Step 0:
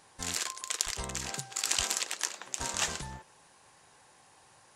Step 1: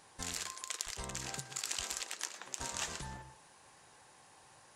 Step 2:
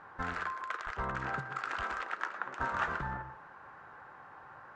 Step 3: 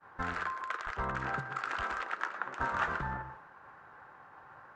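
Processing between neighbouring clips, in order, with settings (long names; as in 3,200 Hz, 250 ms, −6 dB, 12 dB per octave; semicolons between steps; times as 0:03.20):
downward compressor 2 to 1, threshold −39 dBFS, peak gain reduction 9 dB; on a send at −12 dB: convolution reverb RT60 0.30 s, pre-delay 107 ms; on the sum: level −1 dB
low-pass with resonance 1,400 Hz, resonance Q 4; level +5.5 dB
downward expander −48 dBFS; level +1 dB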